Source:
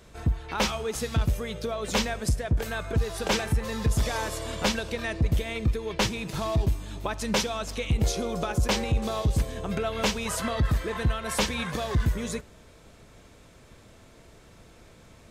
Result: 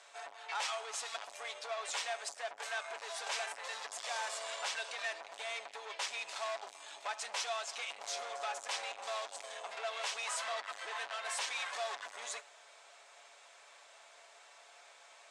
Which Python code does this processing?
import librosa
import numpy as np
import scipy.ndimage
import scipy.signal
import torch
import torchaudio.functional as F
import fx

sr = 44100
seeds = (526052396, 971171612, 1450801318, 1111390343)

y = 10.0 ** (-33.0 / 20.0) * np.tanh(x / 10.0 ** (-33.0 / 20.0))
y = scipy.signal.sosfilt(scipy.signal.ellip(3, 1.0, 70, [700.0, 8500.0], 'bandpass', fs=sr, output='sos'), y)
y = y + 0.36 * np.pad(y, (int(7.1 * sr / 1000.0), 0))[:len(y)]